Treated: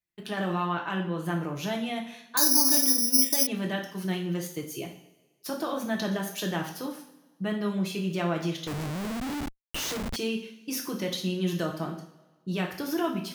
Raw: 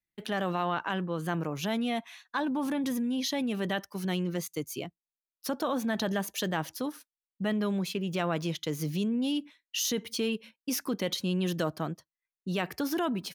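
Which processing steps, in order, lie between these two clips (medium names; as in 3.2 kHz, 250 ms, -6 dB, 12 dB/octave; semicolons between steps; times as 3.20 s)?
two-slope reverb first 0.52 s, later 1.5 s, from -16 dB, DRR 0 dB; 2.37–3.47 s: careless resampling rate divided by 8×, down filtered, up zero stuff; 8.67–10.16 s: Schmitt trigger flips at -32 dBFS; trim -2.5 dB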